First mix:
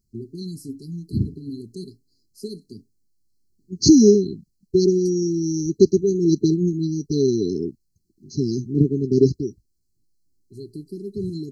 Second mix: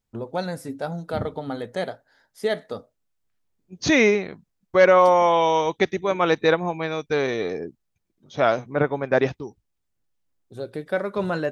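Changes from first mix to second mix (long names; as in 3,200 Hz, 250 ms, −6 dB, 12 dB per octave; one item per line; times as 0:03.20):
second voice −9.5 dB
master: remove linear-phase brick-wall band-stop 420–4,000 Hz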